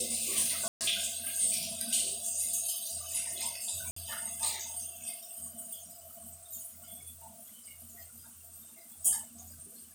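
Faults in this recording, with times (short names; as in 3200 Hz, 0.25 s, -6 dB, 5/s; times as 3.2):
0.68–0.81 gap 0.128 s
3.91–3.96 gap 54 ms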